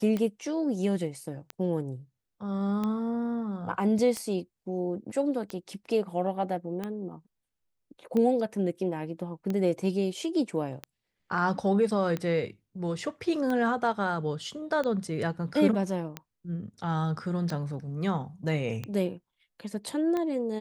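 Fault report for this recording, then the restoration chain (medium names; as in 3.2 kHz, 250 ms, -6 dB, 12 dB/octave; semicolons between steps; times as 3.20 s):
tick 45 rpm -19 dBFS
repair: de-click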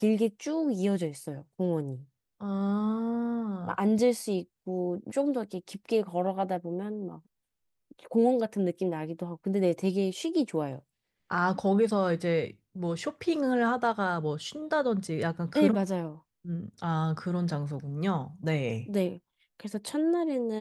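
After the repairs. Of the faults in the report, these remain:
nothing left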